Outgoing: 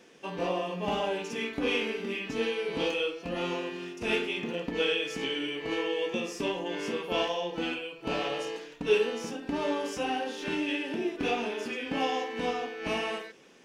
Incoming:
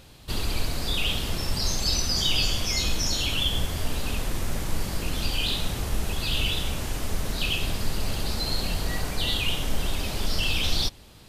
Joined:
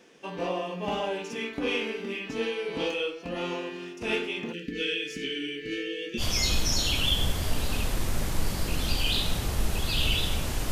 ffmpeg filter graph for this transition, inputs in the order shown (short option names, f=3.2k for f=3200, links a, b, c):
-filter_complex "[0:a]asplit=3[a][b][c];[a]afade=t=out:st=4.52:d=0.02[d];[b]asuperstop=centerf=830:order=12:qfactor=0.78,afade=t=in:st=4.52:d=0.02,afade=t=out:st=6.23:d=0.02[e];[c]afade=t=in:st=6.23:d=0.02[f];[d][e][f]amix=inputs=3:normalize=0,apad=whole_dur=10.71,atrim=end=10.71,atrim=end=6.23,asetpts=PTS-STARTPTS[g];[1:a]atrim=start=2.51:end=7.05,asetpts=PTS-STARTPTS[h];[g][h]acrossfade=d=0.06:c1=tri:c2=tri"